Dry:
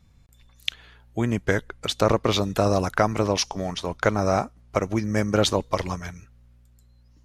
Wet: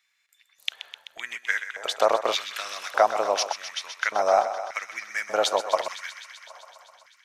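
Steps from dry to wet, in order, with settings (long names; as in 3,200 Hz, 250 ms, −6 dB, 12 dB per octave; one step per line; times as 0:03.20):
feedback echo with a high-pass in the loop 128 ms, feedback 80%, high-pass 340 Hz, level −11 dB
auto-filter high-pass square 0.85 Hz 690–1,900 Hz
level −2.5 dB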